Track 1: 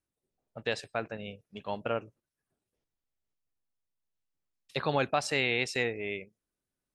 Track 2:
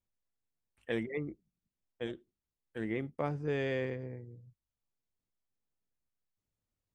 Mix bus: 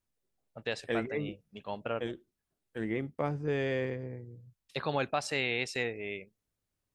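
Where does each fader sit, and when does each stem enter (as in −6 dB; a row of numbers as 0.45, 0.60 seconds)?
−3.0, +2.0 decibels; 0.00, 0.00 seconds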